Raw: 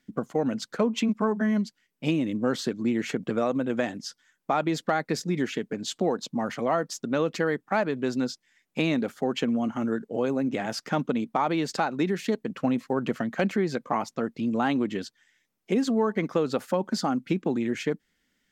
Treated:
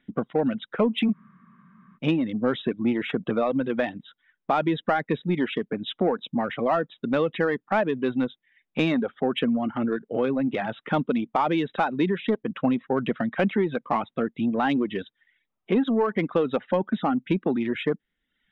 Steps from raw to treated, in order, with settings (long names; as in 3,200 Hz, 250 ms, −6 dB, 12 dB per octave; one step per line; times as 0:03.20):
linear-phase brick-wall low-pass 3,900 Hz
in parallel at −4 dB: soft clipping −24 dBFS, distortion −11 dB
on the sum: reverb reduction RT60 0.67 s
frozen spectrum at 0:01.15, 0.81 s